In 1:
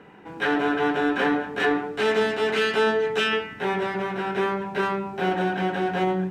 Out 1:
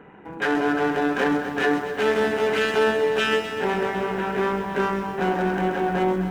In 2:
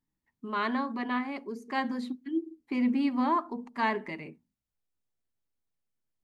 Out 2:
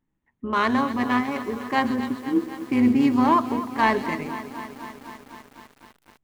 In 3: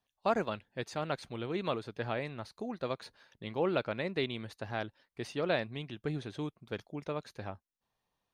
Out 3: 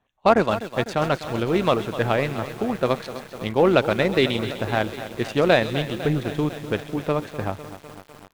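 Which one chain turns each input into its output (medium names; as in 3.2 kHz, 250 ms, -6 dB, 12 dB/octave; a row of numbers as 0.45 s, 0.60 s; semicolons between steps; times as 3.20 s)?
local Wiener filter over 9 samples; AM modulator 140 Hz, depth 25%; in parallel at -4.5 dB: saturation -23.5 dBFS; on the sum: feedback echo behind a high-pass 131 ms, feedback 50%, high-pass 4.5 kHz, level -5 dB; bit-crushed delay 251 ms, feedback 80%, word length 8-bit, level -13 dB; normalise loudness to -23 LUFS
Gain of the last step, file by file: 0.0 dB, +6.5 dB, +11.5 dB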